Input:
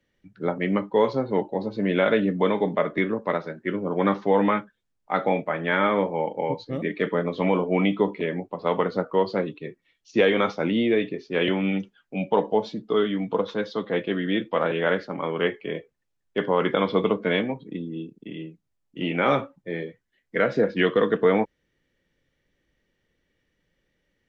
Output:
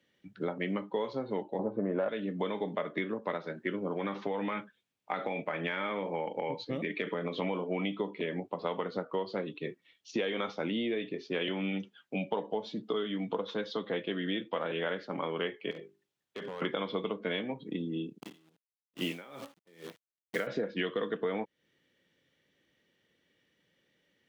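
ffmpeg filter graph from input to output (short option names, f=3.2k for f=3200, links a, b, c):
-filter_complex "[0:a]asettb=1/sr,asplit=3[a][b][c];[a]atrim=end=1.594[d];[b]atrim=start=1.59:end=2.09,asetpts=PTS-STARTPTS,afade=t=in:d=0.004:c=qsin,afade=t=out:st=0.496:d=0.004:c=qsin,lowpass=f=1.4k:w=0.5412,lowpass=f=1.4k:w=1.3066,equalizer=f=670:w=0.95:g=5.5,acontrast=58[e];[c]atrim=start=2.086[f];[d][e]acrossfade=d=0.004:c1=hsin:c2=qsin[g];[g][f]acrossfade=d=0.004:c1=qsin:c2=hsin,asettb=1/sr,asplit=3[h][i][j];[h]atrim=end=3.934[k];[i]atrim=start=3.93:end=7.42,asetpts=PTS-STARTPTS,afade=t=in:d=0.004:c=qsin,afade=t=out:st=3.486:d=0.004:c=qsin,equalizer=f=2.4k:t=o:w=0.39:g=6,acompressor=threshold=-22dB:ratio=4:attack=3.2:release=140:knee=1:detection=peak[l];[j]atrim=start=7.416[m];[k][l]acrossfade=d=0.004:c1=hsin:c2=qsin[n];[n][m]acrossfade=d=0.004:c1=qsin:c2=hsin,asettb=1/sr,asplit=3[o][p][q];[o]atrim=end=15.714[r];[p]atrim=start=15.71:end=16.62,asetpts=PTS-STARTPTS,afade=t=in:d=0.004:c=qsin,afade=t=out:st=0.906:d=0.004:c=qsin,bandreject=f=50:t=h:w=6,bandreject=f=100:t=h:w=6,bandreject=f=150:t=h:w=6,bandreject=f=200:t=h:w=6,bandreject=f=250:t=h:w=6,bandreject=f=300:t=h:w=6,bandreject=f=350:t=h:w=6,bandreject=f=400:t=h:w=6,acompressor=threshold=-35dB:ratio=8:attack=3.2:release=140:knee=1:detection=peak,asoftclip=type=hard:threshold=-35.5dB[s];[q]atrim=start=16.616[t];[r][s]acrossfade=d=0.004:c1=hsin:c2=qsin[u];[u][t]acrossfade=d=0.004:c1=qsin:c2=hsin,asettb=1/sr,asplit=3[v][w][x];[v]atrim=end=18.204[y];[w]atrim=start=18.2:end=20.47,asetpts=PTS-STARTPTS,afade=t=in:d=0.004:c=qsin,afade=t=out:st=2.266:d=0.004:c=qsin,acrusher=bits=7:dc=4:mix=0:aa=0.000001,aeval=exprs='val(0)*pow(10,-32*(0.5-0.5*cos(2*PI*2.3*n/s))/20)':c=same[z];[x]atrim=start=20.466[aa];[y][z]acrossfade=d=0.004:c1=hsin:c2=qsin[ab];[ab][aa]acrossfade=d=0.004:c1=qsin:c2=hsin,highpass=140,equalizer=f=3.3k:t=o:w=0.65:g=5.5,acompressor=threshold=-31dB:ratio=5"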